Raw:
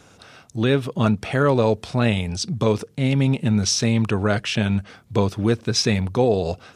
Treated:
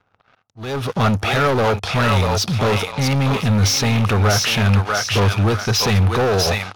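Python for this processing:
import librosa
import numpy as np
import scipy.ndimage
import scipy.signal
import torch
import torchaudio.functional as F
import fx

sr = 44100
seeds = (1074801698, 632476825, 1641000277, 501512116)

y = fx.peak_eq(x, sr, hz=150.0, db=-5.0, octaves=2.9)
y = fx.echo_thinned(y, sr, ms=643, feedback_pct=37, hz=1000.0, wet_db=-3.5)
y = fx.leveller(y, sr, passes=5)
y = fx.env_lowpass(y, sr, base_hz=2200.0, full_db=-11.0)
y = fx.auto_swell(y, sr, attack_ms=378.0)
y = fx.graphic_eq_31(y, sr, hz=(100, 315, 800, 1250, 8000), db=(9, -4, 5, 6, -8))
y = y * 10.0 ** (-7.5 / 20.0)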